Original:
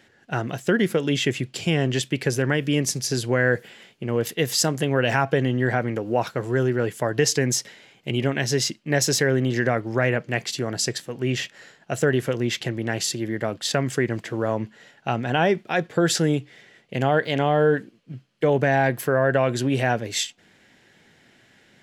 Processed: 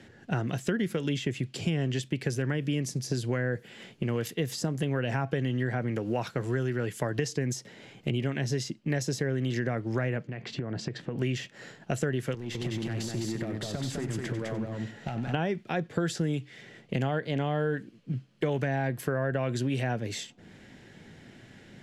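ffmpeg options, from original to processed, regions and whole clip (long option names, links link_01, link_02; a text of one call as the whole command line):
ffmpeg -i in.wav -filter_complex "[0:a]asettb=1/sr,asplit=3[link_01][link_02][link_03];[link_01]atrim=end=10.274[link_04];[link_02]atrim=start=10.27:end=11.18,asetpts=PTS-STARTPTS,afade=type=in:duration=0.004:curve=qsin,afade=type=out:start_time=0.906:duration=0.004:curve=qsin,lowpass=2800,acompressor=threshold=-33dB:ratio=8:attack=3.2:release=140:knee=1:detection=peak[link_05];[link_03]atrim=start=11.176[link_06];[link_04][link_05]acrossfade=duration=0.004:curve1=hsin:curve2=qsin[link_07];[link_07][link_06]acrossfade=duration=0.004:curve1=qsin:curve2=hsin,asettb=1/sr,asplit=3[link_08][link_09][link_10];[link_08]atrim=end=12.344[link_11];[link_09]atrim=start=12.34:end=15.34,asetpts=PTS-STARTPTS,afade=type=in:duration=0.004:curve=qsin,afade=type=out:start_time=2.996:duration=0.004:curve=qsin,acompressor=threshold=-31dB:ratio=6:attack=3.2:release=140:knee=1:detection=peak,aeval=exprs='clip(val(0),-1,0.0224)':channel_layout=same,aecho=1:1:95|205|296:0.251|0.631|0.112,atrim=end_sample=132300[link_12];[link_10]atrim=start=15.336[link_13];[link_11][link_12]acrossfade=duration=0.004:curve1=hsin:curve2=qsin[link_14];[link_14][link_13]acrossfade=duration=0.004:curve1=qsin:curve2=hsin,lowpass=12000,lowshelf=frequency=390:gain=12,acrossover=split=93|1300[link_15][link_16][link_17];[link_15]acompressor=threshold=-52dB:ratio=4[link_18];[link_16]acompressor=threshold=-30dB:ratio=4[link_19];[link_17]acompressor=threshold=-39dB:ratio=4[link_20];[link_18][link_19][link_20]amix=inputs=3:normalize=0" out.wav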